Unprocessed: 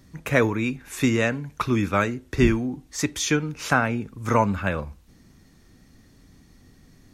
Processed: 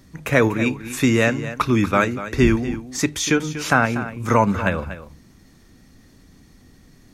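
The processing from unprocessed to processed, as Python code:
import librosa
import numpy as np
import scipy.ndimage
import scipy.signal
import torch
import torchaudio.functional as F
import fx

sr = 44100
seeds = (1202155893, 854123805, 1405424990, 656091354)

p1 = fx.hum_notches(x, sr, base_hz=50, count=3)
p2 = fx.level_steps(p1, sr, step_db=12)
p3 = p1 + (p2 * 10.0 ** (0.0 / 20.0))
y = p3 + 10.0 ** (-13.0 / 20.0) * np.pad(p3, (int(241 * sr / 1000.0), 0))[:len(p3)]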